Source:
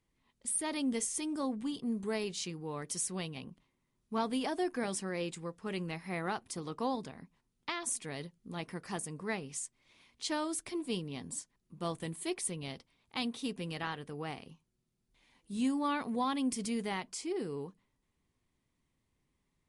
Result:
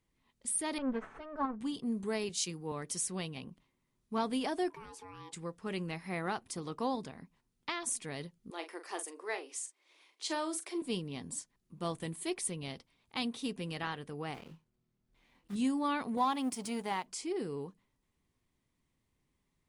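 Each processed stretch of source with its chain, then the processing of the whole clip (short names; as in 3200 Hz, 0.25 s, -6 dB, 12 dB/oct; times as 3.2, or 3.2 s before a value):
0.78–1.61 minimum comb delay 4.6 ms + synth low-pass 1400 Hz, resonance Q 2.1 + upward expander, over -44 dBFS
2.29–2.72 high shelf 6100 Hz +11 dB + three-band expander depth 70%
4.7–5.33 high shelf 9200 Hz -10 dB + compressor 3:1, threshold -46 dBFS + ring modulator 650 Hz
8.5–10.82 elliptic high-pass 320 Hz, stop band 50 dB + doubler 41 ms -10 dB
14.34–15.56 block floating point 3-bit + LPF 2300 Hz 6 dB/oct + doubler 25 ms -6 dB
16.17–17.06 G.711 law mismatch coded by A + HPF 130 Hz 6 dB/oct + bell 880 Hz +8 dB 0.62 oct
whole clip: dry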